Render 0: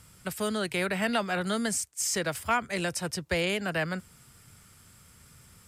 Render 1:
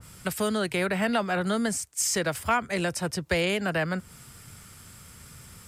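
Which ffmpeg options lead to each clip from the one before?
-filter_complex "[0:a]asplit=2[a][b];[b]acompressor=threshold=-36dB:ratio=6,volume=2.5dB[c];[a][c]amix=inputs=2:normalize=0,adynamicequalizer=threshold=0.0112:dfrequency=1800:dqfactor=0.7:tfrequency=1800:tqfactor=0.7:attack=5:release=100:ratio=0.375:range=2.5:mode=cutabove:tftype=highshelf"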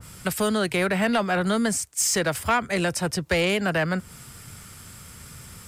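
-af "asoftclip=type=tanh:threshold=-18dB,volume=4.5dB"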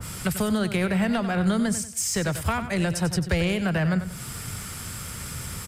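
-filter_complex "[0:a]acrossover=split=160[a][b];[b]acompressor=threshold=-41dB:ratio=2.5[c];[a][c]amix=inputs=2:normalize=0,asplit=2[d][e];[e]aecho=0:1:94|188|282|376:0.282|0.093|0.0307|0.0101[f];[d][f]amix=inputs=2:normalize=0,volume=8.5dB"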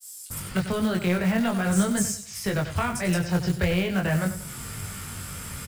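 -filter_complex "[0:a]acrossover=split=5200[a][b];[a]adelay=300[c];[c][b]amix=inputs=2:normalize=0,flanger=delay=19.5:depth=3:speed=0.44,acrusher=bits=5:mode=log:mix=0:aa=0.000001,volume=2.5dB"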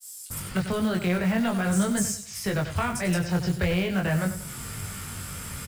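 -af "asoftclip=type=tanh:threshold=-14.5dB"

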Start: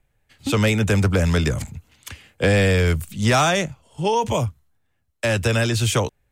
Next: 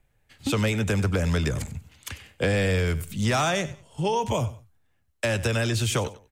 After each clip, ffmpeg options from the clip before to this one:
-af "acompressor=threshold=-25dB:ratio=2,aecho=1:1:95|190:0.15|0.0359"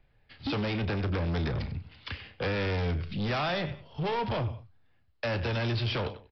-filter_complex "[0:a]aresample=11025,asoftclip=type=tanh:threshold=-29dB,aresample=44100,asplit=2[a][b];[b]adelay=34,volume=-13dB[c];[a][c]amix=inputs=2:normalize=0,volume=1.5dB"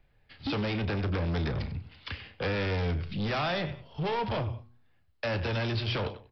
-af "bandreject=f=120.7:t=h:w=4,bandreject=f=241.4:t=h:w=4,bandreject=f=362.1:t=h:w=4,bandreject=f=482.8:t=h:w=4,bandreject=f=603.5:t=h:w=4,bandreject=f=724.2:t=h:w=4,bandreject=f=844.9:t=h:w=4,bandreject=f=965.6:t=h:w=4,bandreject=f=1.0863k:t=h:w=4"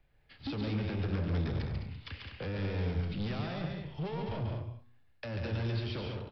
-filter_complex "[0:a]acrossover=split=370[a][b];[b]acompressor=threshold=-39dB:ratio=6[c];[a][c]amix=inputs=2:normalize=0,asplit=2[d][e];[e]aecho=0:1:139.9|207:0.631|0.447[f];[d][f]amix=inputs=2:normalize=0,volume=-4dB"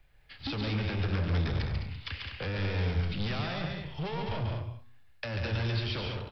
-af "equalizer=f=260:w=0.37:g=-8,volume=8dB"

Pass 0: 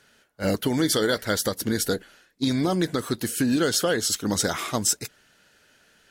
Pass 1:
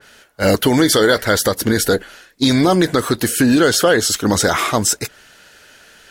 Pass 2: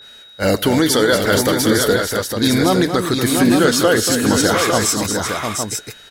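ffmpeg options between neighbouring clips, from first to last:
-filter_complex "[0:a]equalizer=f=180:t=o:w=1.8:g=-5.5,asplit=2[a][b];[b]alimiter=limit=-20dB:level=0:latency=1:release=18,volume=2dB[c];[a][c]amix=inputs=2:normalize=0,adynamicequalizer=threshold=0.0158:dfrequency=2500:dqfactor=0.7:tfrequency=2500:tqfactor=0.7:attack=5:release=100:ratio=0.375:range=2.5:mode=cutabove:tftype=highshelf,volume=7dB"
-filter_complex "[0:a]aeval=exprs='val(0)+0.0141*sin(2*PI*3800*n/s)':c=same,asplit=2[a][b];[b]aecho=0:1:88|238|701|858:0.106|0.376|0.531|0.473[c];[a][c]amix=inputs=2:normalize=0,volume=-2dB"

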